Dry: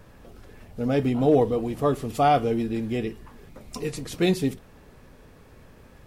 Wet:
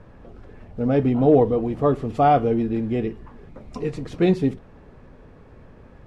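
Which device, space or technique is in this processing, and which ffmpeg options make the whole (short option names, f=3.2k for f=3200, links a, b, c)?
through cloth: -af "lowpass=8.5k,highshelf=f=3.1k:g=-17.5,volume=4dB"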